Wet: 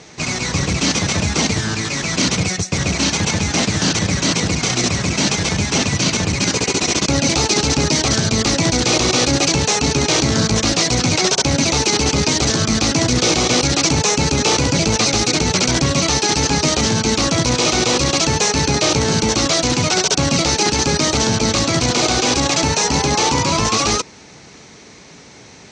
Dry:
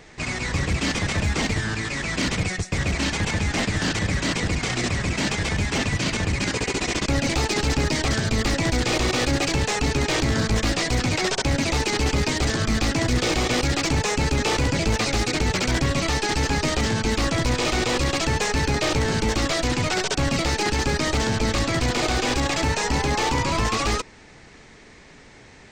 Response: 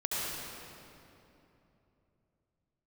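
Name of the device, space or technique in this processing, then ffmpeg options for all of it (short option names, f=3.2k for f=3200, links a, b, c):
car door speaker: -af "highpass=92,equalizer=f=170:t=q:w=4:g=3,equalizer=f=1.8k:t=q:w=4:g=-6,equalizer=f=4.2k:t=q:w=4:g=4,equalizer=f=6k:t=q:w=4:g=9,lowpass=f=9.3k:w=0.5412,lowpass=f=9.3k:w=1.3066,volume=6dB"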